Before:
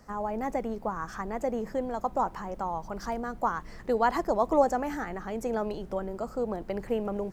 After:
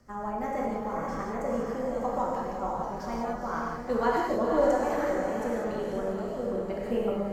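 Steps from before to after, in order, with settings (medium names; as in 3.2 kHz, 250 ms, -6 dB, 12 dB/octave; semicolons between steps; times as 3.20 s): rotary cabinet horn 6.3 Hz, later 1 Hz, at 3.05 s; echo that smears into a reverb 478 ms, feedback 42%, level -5 dB; gated-style reverb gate 220 ms flat, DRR -3.5 dB; trim -3 dB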